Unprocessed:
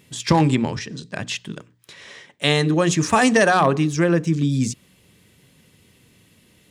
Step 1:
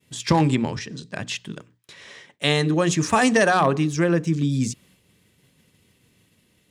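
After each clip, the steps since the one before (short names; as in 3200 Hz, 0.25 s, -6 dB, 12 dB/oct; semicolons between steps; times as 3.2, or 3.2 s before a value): expander -50 dBFS; gain -2 dB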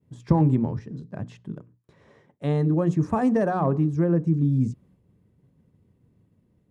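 EQ curve 120 Hz 0 dB, 1000 Hz -10 dB, 2900 Hz -28 dB; gain +2.5 dB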